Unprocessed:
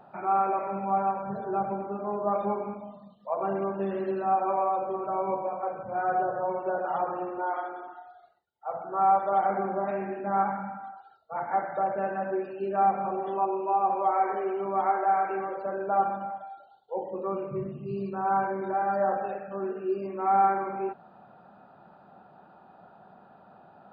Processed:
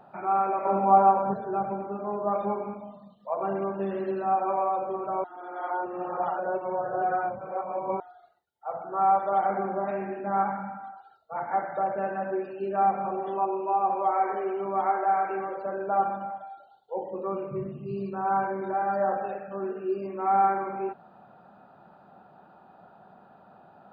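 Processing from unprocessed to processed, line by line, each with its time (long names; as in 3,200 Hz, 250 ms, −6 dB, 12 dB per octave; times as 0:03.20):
0:00.65–0:01.34: flat-topped bell 520 Hz +8.5 dB 2.8 octaves
0:05.24–0:08.00: reverse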